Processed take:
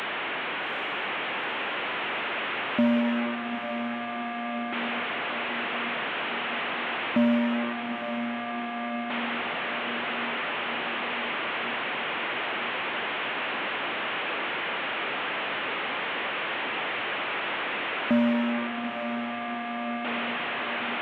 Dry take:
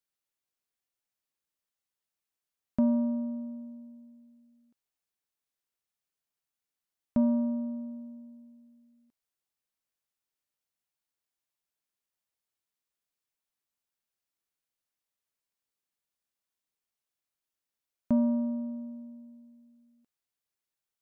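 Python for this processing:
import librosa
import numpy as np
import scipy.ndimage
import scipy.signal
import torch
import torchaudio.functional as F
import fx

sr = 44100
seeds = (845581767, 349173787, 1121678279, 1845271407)

p1 = fx.delta_mod(x, sr, bps=16000, step_db=-31.0)
p2 = scipy.signal.sosfilt(scipy.signal.butter(2, 270.0, 'highpass', fs=sr, output='sos'), p1)
p3 = np.clip(p2, -10.0 ** (-28.5 / 20.0), 10.0 ** (-28.5 / 20.0))
p4 = p2 + (p3 * librosa.db_to_amplitude(-7.0))
p5 = fx.echo_diffused(p4, sr, ms=827, feedback_pct=65, wet_db=-8)
y = p5 * librosa.db_to_amplitude(4.0)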